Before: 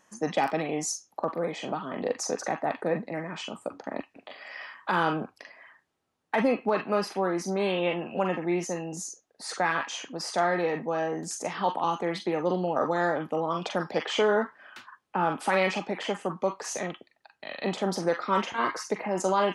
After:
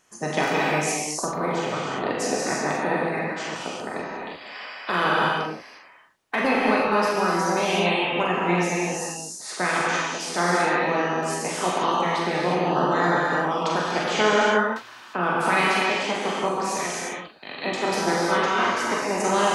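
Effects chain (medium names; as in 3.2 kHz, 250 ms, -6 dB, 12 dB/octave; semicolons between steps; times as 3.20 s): spectral peaks clipped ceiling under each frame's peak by 13 dB; gated-style reverb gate 380 ms flat, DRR -4.5 dB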